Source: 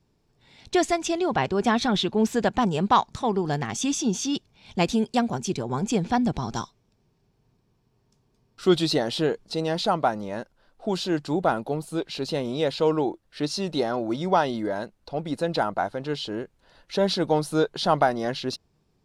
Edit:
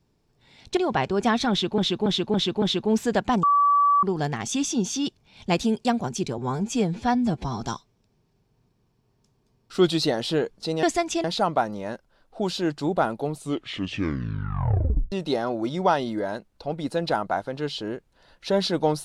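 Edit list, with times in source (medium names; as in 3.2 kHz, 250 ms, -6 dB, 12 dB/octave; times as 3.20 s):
0.77–1.18 s: move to 9.71 s
1.91–2.19 s: loop, 5 plays
2.72–3.32 s: bleep 1.15 kHz -15.5 dBFS
5.67–6.49 s: stretch 1.5×
11.76 s: tape stop 1.83 s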